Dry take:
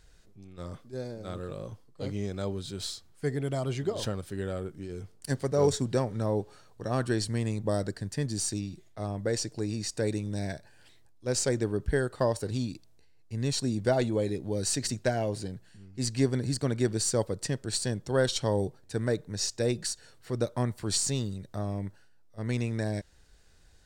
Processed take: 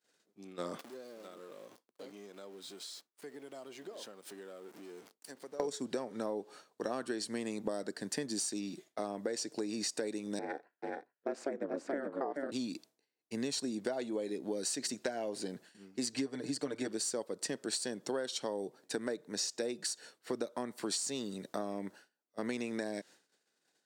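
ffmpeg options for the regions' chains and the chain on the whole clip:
-filter_complex "[0:a]asettb=1/sr,asplit=3[s0][s1][s2];[s0]atrim=end=0.794[s3];[s1]atrim=start=0.79:end=5.6,asetpts=PTS-STARTPTS,afade=t=in:d=0.004:c=qsin,afade=t=out:st=4.806:d=0.004:c=qsin,aeval=exprs='val(0)+0.5*0.00841*sgn(val(0))':c=same,highpass=f=230:p=1,acompressor=threshold=0.00447:ratio=8:attack=3.2:release=140:knee=1:detection=peak[s4];[s2]atrim=start=5.596[s5];[s3][s4]acrossfade=d=0.004:c1=hsin:c2=qsin[s6];[s6][s5]acrossfade=d=0.004:c1=qsin:c2=hsin,asettb=1/sr,asplit=3[s7][s8][s9];[s7]atrim=end=10.394[s10];[s8]atrim=start=10.39:end=12.52,asetpts=PTS-STARTPTS,afade=t=in:d=0.004:c=qsin,afade=t=out:st=2.126:d=0.004:c=qsin,acrossover=split=170 2200:gain=0.0794 1 0.0794[s11][s12][s13];[s11][s12][s13]amix=inputs=3:normalize=0,aecho=1:1:430:0.668,atrim=end_sample=93933,aeval=exprs='val(0)*sin(2*PI*140*n/s)':c=same[s14];[s9]atrim=start=12.516[s15];[s10][s14]acrossfade=d=0.004:c1=hsin:c2=qsin[s16];[s16][s15]acrossfade=d=0.004:c1=qsin:c2=hsin,asettb=1/sr,asplit=3[s17][s18][s19];[s17]atrim=end=16.124[s20];[s18]atrim=start=16.12:end=16.88,asetpts=PTS-STARTPTS,afade=t=in:d=0.004:c=qsin,afade=t=out:st=0.756:d=0.004:c=qsin,highshelf=f=11000:g=-8.5,aecho=1:1:6.7:0.8,atrim=end_sample=33516[s21];[s19]atrim=start=16.876[s22];[s20][s21]acrossfade=d=0.004:c1=hsin:c2=qsin[s23];[s23][s22]acrossfade=d=0.004:c1=qsin:c2=hsin,agate=range=0.0224:threshold=0.00501:ratio=3:detection=peak,highpass=f=230:w=0.5412,highpass=f=230:w=1.3066,acompressor=threshold=0.0112:ratio=12,volume=2"

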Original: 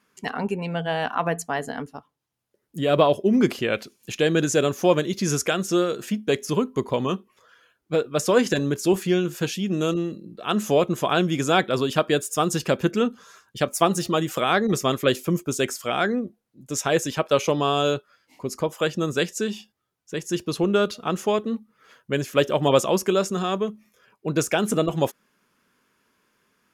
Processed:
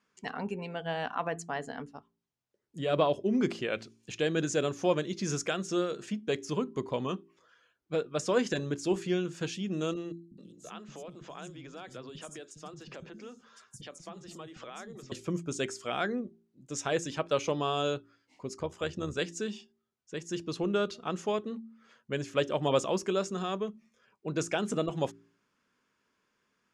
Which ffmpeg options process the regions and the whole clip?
-filter_complex "[0:a]asettb=1/sr,asplit=3[s0][s1][s2];[s0]atrim=end=10.124[s3];[s1]atrim=start=10.12:end=15.12,asetpts=PTS-STARTPTS,afade=t=in:d=0.004:c=qsin,afade=t=out:st=4.996:d=0.004:c=qsin,acompressor=threshold=0.0282:ratio=10:attack=3.2:release=140:knee=1:detection=peak,acrossover=split=230|5400[s4][s5][s6];[s4]adelay=190[s7];[s5]adelay=260[s8];[s7][s8][s6]amix=inputs=3:normalize=0,atrim=end_sample=220500[s9];[s2]atrim=start=15.116[s10];[s3][s9]acrossfade=d=0.004:c1=hsin:c2=qsin[s11];[s11][s10]acrossfade=d=0.004:c1=qsin:c2=hsin,asettb=1/sr,asplit=3[s12][s13][s14];[s12]atrim=end=18.564[s15];[s13]atrim=start=18.56:end=19.19,asetpts=PTS-STARTPTS,afade=t=in:d=0.004:c=qsin,afade=t=out:st=0.626:d=0.004:c=qsin,tremolo=f=72:d=0.462,equalizer=f=81:w=2.8:g=13.5[s16];[s14]atrim=start=19.186[s17];[s15][s16]acrossfade=d=0.004:c1=hsin:c2=qsin[s18];[s18][s17]acrossfade=d=0.004:c1=qsin:c2=hsin,lowpass=f=8200:w=0.5412,lowpass=f=8200:w=1.3066,bandreject=f=56.47:t=h:w=4,bandreject=f=112.94:t=h:w=4,bandreject=f=169.41:t=h:w=4,bandreject=f=225.88:t=h:w=4,bandreject=f=282.35:t=h:w=4,bandreject=f=338.82:t=h:w=4,bandreject=f=395.29:t=h:w=4,volume=0.376"

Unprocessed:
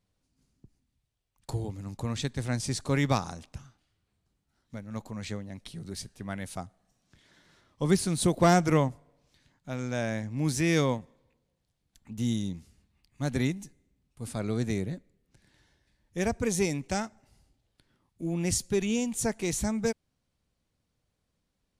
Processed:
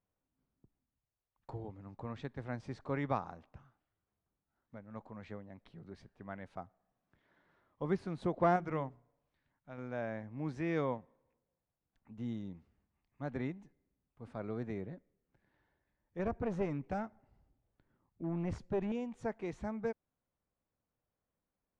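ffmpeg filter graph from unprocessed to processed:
-filter_complex "[0:a]asettb=1/sr,asplit=3[s0][s1][s2];[s0]atrim=end=8.564[s3];[s1]atrim=start=8.56:end=9.78,asetpts=PTS-STARTPTS,afade=t=in:d=0.004:c=qsin,afade=t=out:st=1.216:d=0.004:c=qsin,equalizer=f=500:w=0.35:g=-5.5,bandreject=f=60:t=h:w=6,bandreject=f=120:t=h:w=6,bandreject=f=180:t=h:w=6,bandreject=f=240:t=h:w=6,bandreject=f=300:t=h:w=6,bandreject=f=360:t=h:w=6,bandreject=f=420:t=h:w=6[s4];[s2]atrim=start=9.776[s5];[s3][s4]acrossfade=d=0.004:c1=hsin:c2=qsin[s6];[s6][s5]acrossfade=d=0.004:c1=qsin:c2=hsin,asettb=1/sr,asplit=3[s7][s8][s9];[s7]atrim=end=16.194[s10];[s8]atrim=start=16.19:end=18.92,asetpts=PTS-STARTPTS,afade=t=in:d=0.004:c=qsin,afade=t=out:st=2.726:d=0.004:c=qsin,lowshelf=f=290:g=8.5,aeval=exprs='clip(val(0),-1,0.0631)':c=same[s11];[s9]atrim=start=18.916[s12];[s10][s11]acrossfade=d=0.004:c1=hsin:c2=qsin[s13];[s13][s12]acrossfade=d=0.004:c1=qsin:c2=hsin,lowpass=1300,lowshelf=f=350:g=-11,volume=0.708"

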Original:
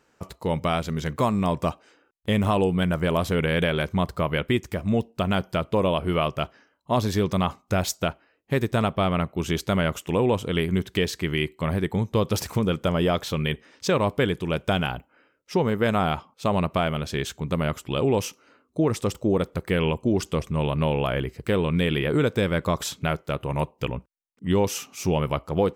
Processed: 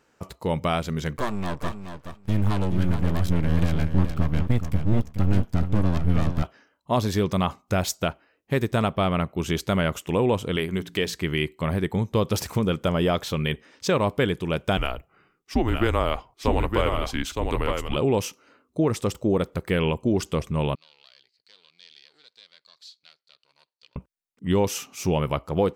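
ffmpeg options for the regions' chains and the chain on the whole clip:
-filter_complex "[0:a]asettb=1/sr,asplit=3[s0][s1][s2];[s0]atrim=end=1.174[s3];[s1]atrim=start=1.17:end=6.43,asetpts=PTS-STARTPTS,afade=t=in:d=0.004:c=qsin,afade=t=out:st=5.256:d=0.004:c=qsin,asubboost=boost=9:cutoff=130,aeval=exprs='max(val(0),0)':c=same,aecho=1:1:424|848:0.355|0.0532,atrim=end_sample=231966[s4];[s2]atrim=start=6.426[s5];[s3][s4]acrossfade=d=0.004:c1=hsin:c2=qsin[s6];[s6][s5]acrossfade=d=0.004:c1=qsin:c2=hsin,asettb=1/sr,asplit=3[s7][s8][s9];[s7]atrim=end=10.564[s10];[s8]atrim=start=10.56:end=11.14,asetpts=PTS-STARTPTS,afade=t=in:d=0.004:c=qsin,afade=t=out:st=0.576:d=0.004:c=qsin,lowshelf=f=180:g=-8,bandreject=f=57.4:t=h:w=4,bandreject=f=114.8:t=h:w=4,bandreject=f=172.2:t=h:w=4,bandreject=f=229.6:t=h:w=4,bandreject=f=287:t=h:w=4[s11];[s9]atrim=start=11.136[s12];[s10][s11]acrossfade=d=0.004:c1=hsin:c2=qsin[s13];[s13][s12]acrossfade=d=0.004:c1=qsin:c2=hsin,asettb=1/sr,asplit=3[s14][s15][s16];[s14]atrim=end=14.774[s17];[s15]atrim=start=14.77:end=17.96,asetpts=PTS-STARTPTS,afade=t=in:d=0.004:c=qsin,afade=t=out:st=3.186:d=0.004:c=qsin,afreqshift=-130,aecho=1:1:914:0.596,atrim=end_sample=140679[s18];[s16]atrim=start=17.956[s19];[s17][s18]acrossfade=d=0.004:c1=hsin:c2=qsin[s20];[s20][s19]acrossfade=d=0.004:c1=qsin:c2=hsin,asettb=1/sr,asplit=3[s21][s22][s23];[s21]atrim=end=20.754[s24];[s22]atrim=start=20.75:end=23.96,asetpts=PTS-STARTPTS,afade=t=in:d=0.004:c=qsin,afade=t=out:st=3.206:d=0.004:c=qsin,aeval=exprs='if(lt(val(0),0),0.251*val(0),val(0))':c=same,bandpass=f=4400:t=q:w=10[s25];[s23]atrim=start=23.956[s26];[s24][s25]acrossfade=d=0.004:c1=hsin:c2=qsin[s27];[s27][s26]acrossfade=d=0.004:c1=qsin:c2=hsin"

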